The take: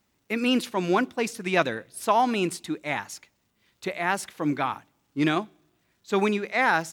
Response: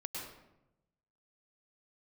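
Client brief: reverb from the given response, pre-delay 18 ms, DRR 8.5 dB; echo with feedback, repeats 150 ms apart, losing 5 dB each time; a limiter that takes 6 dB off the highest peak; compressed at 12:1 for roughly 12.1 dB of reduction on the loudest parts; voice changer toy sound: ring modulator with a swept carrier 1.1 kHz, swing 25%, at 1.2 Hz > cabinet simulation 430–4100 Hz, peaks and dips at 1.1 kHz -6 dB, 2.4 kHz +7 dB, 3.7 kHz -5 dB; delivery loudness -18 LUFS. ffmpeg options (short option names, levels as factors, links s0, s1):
-filter_complex "[0:a]acompressor=threshold=0.0355:ratio=12,alimiter=limit=0.0631:level=0:latency=1,aecho=1:1:150|300|450|600|750|900|1050:0.562|0.315|0.176|0.0988|0.0553|0.031|0.0173,asplit=2[s0][s1];[1:a]atrim=start_sample=2205,adelay=18[s2];[s1][s2]afir=irnorm=-1:irlink=0,volume=0.376[s3];[s0][s3]amix=inputs=2:normalize=0,aeval=exprs='val(0)*sin(2*PI*1100*n/s+1100*0.25/1.2*sin(2*PI*1.2*n/s))':c=same,highpass=430,equalizer=f=1100:t=q:w=4:g=-6,equalizer=f=2400:t=q:w=4:g=7,equalizer=f=3700:t=q:w=4:g=-5,lowpass=f=4100:w=0.5412,lowpass=f=4100:w=1.3066,volume=9.44"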